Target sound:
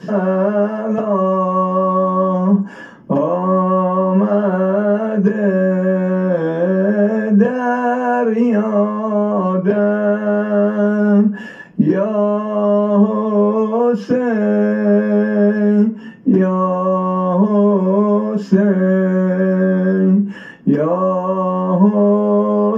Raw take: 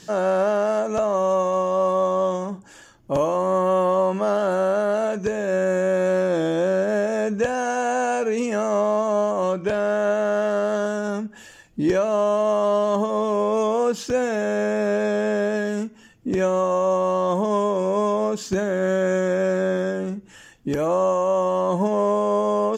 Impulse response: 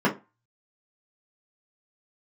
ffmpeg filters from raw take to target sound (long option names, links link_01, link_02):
-filter_complex "[0:a]acompressor=threshold=-32dB:ratio=3[link_01];[1:a]atrim=start_sample=2205[link_02];[link_01][link_02]afir=irnorm=-1:irlink=0,volume=-3.5dB"